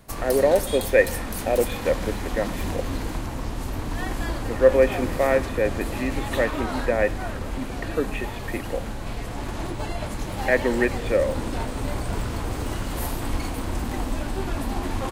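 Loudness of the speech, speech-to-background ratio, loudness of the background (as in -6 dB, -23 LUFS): -24.0 LUFS, 6.5 dB, -30.5 LUFS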